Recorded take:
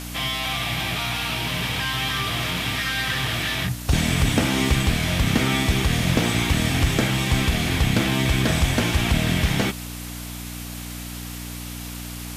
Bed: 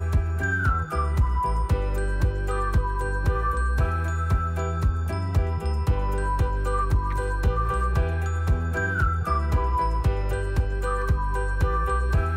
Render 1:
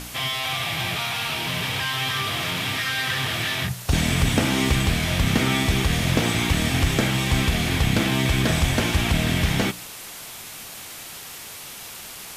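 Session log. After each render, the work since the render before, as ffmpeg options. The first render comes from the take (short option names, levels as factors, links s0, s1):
-af "bandreject=f=60:t=h:w=4,bandreject=f=120:t=h:w=4,bandreject=f=180:t=h:w=4,bandreject=f=240:t=h:w=4,bandreject=f=300:t=h:w=4"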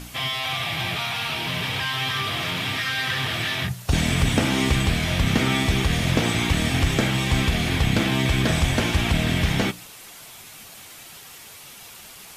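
-af "afftdn=nr=6:nf=-38"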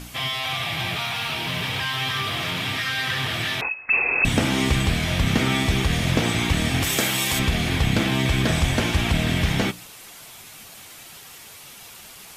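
-filter_complex "[0:a]asettb=1/sr,asplit=3[s0][s1][s2];[s0]atrim=end=0.894[s3];[s1]atrim=start=0.89:end=2.51,asetpts=PTS-STARTPTS,afade=t=in:d=0.004:c=qsin,afade=t=out:st=1.616:d=0.004:c=qsin,aeval=exprs='val(0)*gte(abs(val(0)),0.00501)':c=same[s4];[s2]atrim=start=2.506[s5];[s3][s4]acrossfade=d=0.004:c1=hsin:c2=qsin[s6];[s6][s5]acrossfade=d=0.004:c1=qsin:c2=hsin,asettb=1/sr,asplit=3[s7][s8][s9];[s7]atrim=end=3.614[s10];[s8]atrim=start=3.61:end=4.25,asetpts=PTS-STARTPTS,afade=t=in:d=0.004:c=qsin,afade=t=out:st=0.636:d=0.004:c=qsin,lowpass=f=2300:t=q:w=0.5098,lowpass=f=2300:t=q:w=0.6013,lowpass=f=2300:t=q:w=0.9,lowpass=f=2300:t=q:w=2.563,afreqshift=-2700[s11];[s9]atrim=start=4.246[s12];[s10][s11]acrossfade=d=0.004:c1=hsin:c2=qsin[s13];[s13][s12]acrossfade=d=0.004:c1=qsin:c2=hsin,asplit=3[s14][s15][s16];[s14]afade=t=out:st=6.82:d=0.02[s17];[s15]aemphasis=mode=production:type=bsi,afade=t=in:st=6.82:d=0.02,afade=t=out:st=7.38:d=0.02[s18];[s16]afade=t=in:st=7.38:d=0.02[s19];[s17][s18][s19]amix=inputs=3:normalize=0"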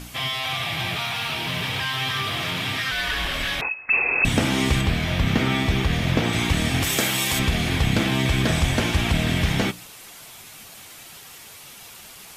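-filter_complex "[0:a]asettb=1/sr,asplit=3[s0][s1][s2];[s0]atrim=end=2.914[s3];[s1]atrim=start=2.91:end=3.6,asetpts=PTS-STARTPTS,afade=t=in:d=0.004:c=qsin,afade=t=out:st=0.686:d=0.004:c=qsin,afreqshift=-80[s4];[s2]atrim=start=3.596[s5];[s3][s4]acrossfade=d=0.004:c1=hsin:c2=qsin[s6];[s6][s5]acrossfade=d=0.004:c1=qsin:c2=hsin,asettb=1/sr,asplit=3[s7][s8][s9];[s7]atrim=end=4.814[s10];[s8]atrim=start=4.81:end=6.33,asetpts=PTS-STARTPTS,afade=t=in:d=0.004:c=qsin,afade=t=out:st=1.516:d=0.004:c=qsin,equalizer=f=9000:w=0.68:g=-8[s11];[s9]atrim=start=6.326[s12];[s10][s11]acrossfade=d=0.004:c1=hsin:c2=qsin[s13];[s13][s12]acrossfade=d=0.004:c1=qsin:c2=hsin"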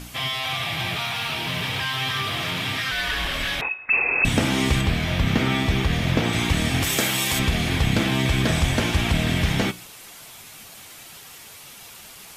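-af "bandreject=f=370.3:t=h:w=4,bandreject=f=740.6:t=h:w=4,bandreject=f=1110.9:t=h:w=4,bandreject=f=1481.2:t=h:w=4,bandreject=f=1851.5:t=h:w=4,bandreject=f=2221.8:t=h:w=4,bandreject=f=2592.1:t=h:w=4,bandreject=f=2962.4:t=h:w=4,bandreject=f=3332.7:t=h:w=4,bandreject=f=3703:t=h:w=4"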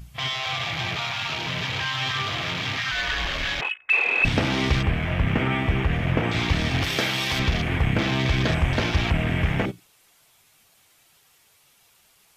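-af "afwtdn=0.0355,equalizer=f=230:t=o:w=0.82:g=-4"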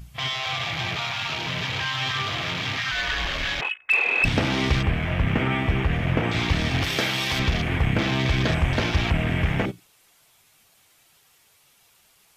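-af "aeval=exprs='clip(val(0),-1,0.224)':c=same"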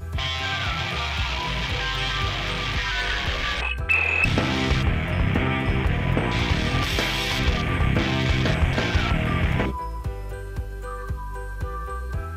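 -filter_complex "[1:a]volume=0.447[s0];[0:a][s0]amix=inputs=2:normalize=0"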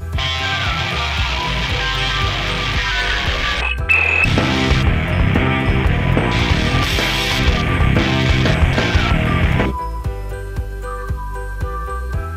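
-af "volume=2.24,alimiter=limit=0.708:level=0:latency=1"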